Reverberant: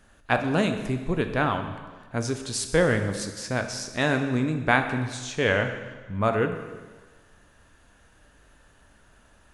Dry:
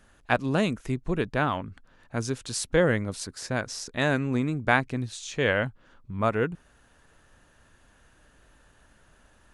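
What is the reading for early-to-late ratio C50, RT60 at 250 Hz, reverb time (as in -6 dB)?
8.5 dB, 1.3 s, 1.4 s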